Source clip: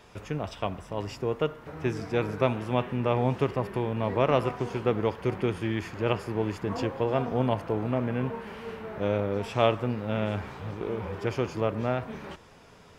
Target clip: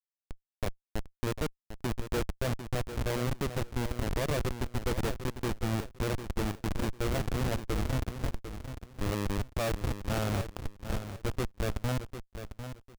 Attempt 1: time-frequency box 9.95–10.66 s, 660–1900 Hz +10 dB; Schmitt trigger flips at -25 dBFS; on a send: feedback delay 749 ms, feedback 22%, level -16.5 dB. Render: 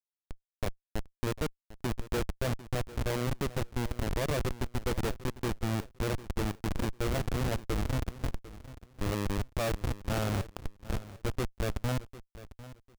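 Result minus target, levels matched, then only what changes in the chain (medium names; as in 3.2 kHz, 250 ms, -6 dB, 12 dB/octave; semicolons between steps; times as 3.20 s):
echo-to-direct -6.5 dB
change: feedback delay 749 ms, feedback 22%, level -10 dB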